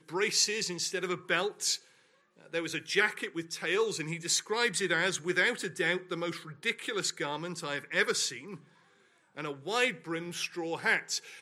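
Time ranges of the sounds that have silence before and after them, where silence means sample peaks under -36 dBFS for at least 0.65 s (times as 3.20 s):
2.53–8.55 s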